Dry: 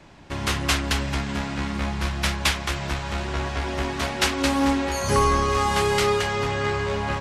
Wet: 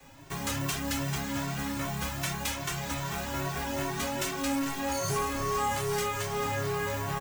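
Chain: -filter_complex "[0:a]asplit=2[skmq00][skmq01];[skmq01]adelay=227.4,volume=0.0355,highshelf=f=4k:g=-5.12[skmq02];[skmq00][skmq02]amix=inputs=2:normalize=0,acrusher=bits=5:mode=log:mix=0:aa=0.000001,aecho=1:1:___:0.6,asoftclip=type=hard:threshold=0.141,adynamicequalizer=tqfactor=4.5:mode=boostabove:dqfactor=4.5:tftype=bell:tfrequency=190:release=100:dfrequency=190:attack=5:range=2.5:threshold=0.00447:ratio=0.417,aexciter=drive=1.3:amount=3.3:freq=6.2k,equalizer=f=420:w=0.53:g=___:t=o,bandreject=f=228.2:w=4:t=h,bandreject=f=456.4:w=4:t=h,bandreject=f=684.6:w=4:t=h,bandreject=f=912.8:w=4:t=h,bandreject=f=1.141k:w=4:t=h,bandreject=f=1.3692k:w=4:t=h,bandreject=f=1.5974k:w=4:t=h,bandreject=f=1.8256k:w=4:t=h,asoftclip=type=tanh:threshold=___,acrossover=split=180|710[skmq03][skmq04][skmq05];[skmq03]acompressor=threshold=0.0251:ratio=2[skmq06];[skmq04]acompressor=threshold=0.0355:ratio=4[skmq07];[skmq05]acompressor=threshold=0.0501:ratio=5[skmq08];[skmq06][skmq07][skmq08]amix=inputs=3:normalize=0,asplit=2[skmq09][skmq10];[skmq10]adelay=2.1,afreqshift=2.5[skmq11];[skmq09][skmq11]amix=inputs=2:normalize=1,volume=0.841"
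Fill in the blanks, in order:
7.4, -2.5, 0.133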